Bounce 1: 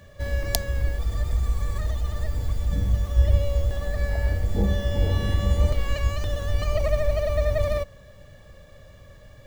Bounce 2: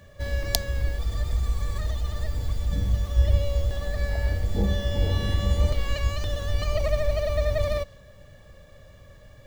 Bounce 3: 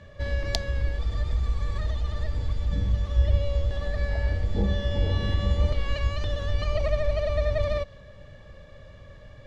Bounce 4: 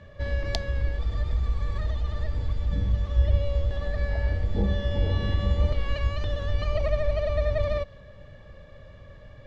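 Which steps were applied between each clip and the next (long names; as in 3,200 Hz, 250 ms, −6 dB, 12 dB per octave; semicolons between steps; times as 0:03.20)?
dynamic equaliser 4,100 Hz, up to +5 dB, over −54 dBFS, Q 1.2; level −1.5 dB
low-pass filter 4,400 Hz 12 dB per octave; notch filter 720 Hz, Q 23; in parallel at −2 dB: downward compressor, threshold −31 dBFS, peak gain reduction 16 dB; on the sum: level −2.5 dB
low-pass filter 3,900 Hz 6 dB per octave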